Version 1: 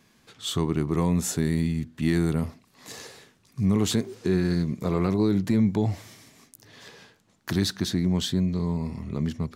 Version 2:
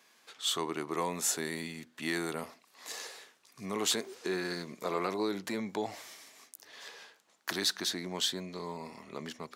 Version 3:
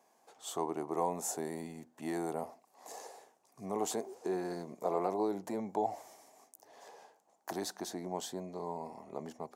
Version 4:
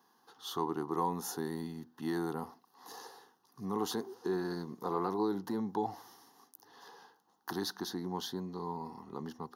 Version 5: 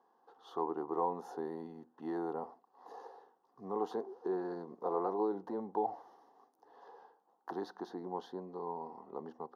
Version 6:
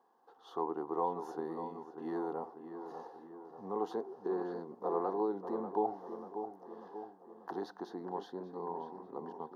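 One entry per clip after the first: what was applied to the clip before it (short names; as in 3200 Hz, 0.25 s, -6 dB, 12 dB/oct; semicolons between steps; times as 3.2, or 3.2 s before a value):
HPF 560 Hz 12 dB/oct
EQ curve 220 Hz 0 dB, 540 Hz +4 dB, 770 Hz +11 dB, 1300 Hz -8 dB, 3800 Hz -15 dB, 6600 Hz -4 dB; gain -3 dB
fixed phaser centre 2300 Hz, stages 6; gain +6 dB
band-pass 590 Hz, Q 2.4; gain +6.5 dB
darkening echo 0.59 s, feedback 56%, low-pass 2500 Hz, level -9 dB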